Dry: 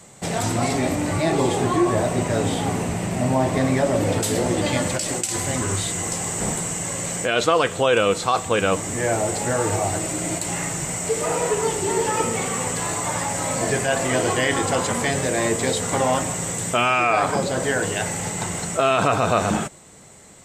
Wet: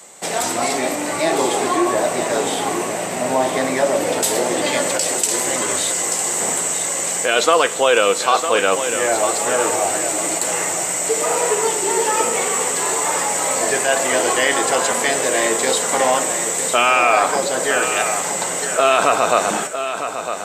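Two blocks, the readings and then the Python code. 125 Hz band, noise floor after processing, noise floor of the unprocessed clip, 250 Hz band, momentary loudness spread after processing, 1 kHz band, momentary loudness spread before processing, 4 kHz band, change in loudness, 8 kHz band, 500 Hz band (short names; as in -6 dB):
-12.5 dB, -24 dBFS, -32 dBFS, -2.0 dB, 5 LU, +5.0 dB, 6 LU, +5.5 dB, +4.5 dB, +7.0 dB, +4.0 dB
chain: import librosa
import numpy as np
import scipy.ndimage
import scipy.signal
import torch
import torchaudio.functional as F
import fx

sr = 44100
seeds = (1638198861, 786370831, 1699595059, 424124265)

y = scipy.signal.sosfilt(scipy.signal.butter(2, 390.0, 'highpass', fs=sr, output='sos'), x)
y = fx.high_shelf(y, sr, hz=9600.0, db=5.5)
y = fx.echo_feedback(y, sr, ms=955, feedback_pct=31, wet_db=-9.0)
y = F.gain(torch.from_numpy(y), 4.5).numpy()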